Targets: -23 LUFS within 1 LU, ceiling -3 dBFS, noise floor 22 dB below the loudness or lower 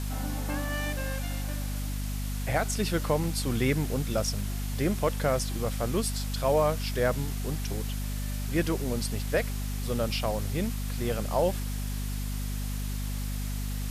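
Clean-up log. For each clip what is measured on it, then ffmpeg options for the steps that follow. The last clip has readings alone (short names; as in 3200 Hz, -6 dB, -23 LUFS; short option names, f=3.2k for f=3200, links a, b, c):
hum 50 Hz; harmonics up to 250 Hz; hum level -30 dBFS; noise floor -32 dBFS; noise floor target -53 dBFS; loudness -30.5 LUFS; peak -13.5 dBFS; loudness target -23.0 LUFS
-> -af "bandreject=f=50:t=h:w=4,bandreject=f=100:t=h:w=4,bandreject=f=150:t=h:w=4,bandreject=f=200:t=h:w=4,bandreject=f=250:t=h:w=4"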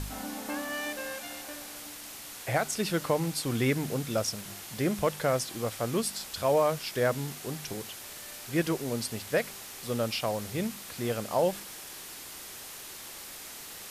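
hum none; noise floor -44 dBFS; noise floor target -54 dBFS
-> -af "afftdn=nr=10:nf=-44"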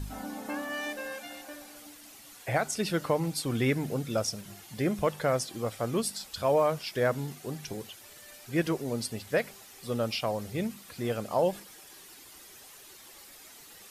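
noise floor -51 dBFS; noise floor target -53 dBFS
-> -af "afftdn=nr=6:nf=-51"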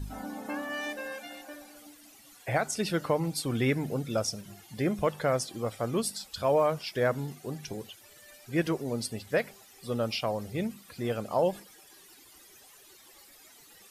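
noise floor -56 dBFS; loudness -31.0 LUFS; peak -15.0 dBFS; loudness target -23.0 LUFS
-> -af "volume=8dB"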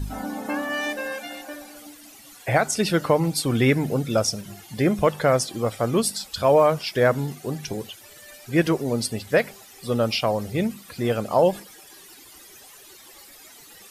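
loudness -23.0 LUFS; peak -7.0 dBFS; noise floor -48 dBFS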